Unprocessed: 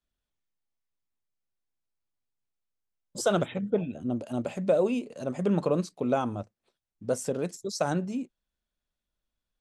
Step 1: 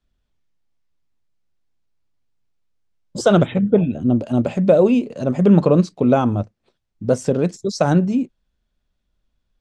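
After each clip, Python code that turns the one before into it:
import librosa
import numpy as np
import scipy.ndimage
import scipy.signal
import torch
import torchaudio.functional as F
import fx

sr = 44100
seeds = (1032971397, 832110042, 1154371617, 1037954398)

y = scipy.signal.sosfilt(scipy.signal.butter(2, 6100.0, 'lowpass', fs=sr, output='sos'), x)
y = fx.low_shelf(y, sr, hz=300.0, db=9.0)
y = y * librosa.db_to_amplitude(8.0)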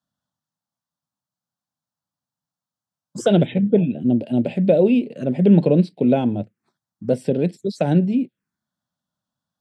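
y = scipy.signal.sosfilt(scipy.signal.butter(4, 130.0, 'highpass', fs=sr, output='sos'), x)
y = fx.env_phaser(y, sr, low_hz=400.0, high_hz=1200.0, full_db=-18.5)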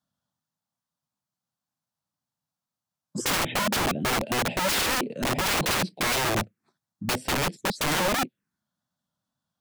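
y = fx.wow_flutter(x, sr, seeds[0], rate_hz=2.1, depth_cents=44.0)
y = (np.mod(10.0 ** (20.0 / 20.0) * y + 1.0, 2.0) - 1.0) / 10.0 ** (20.0 / 20.0)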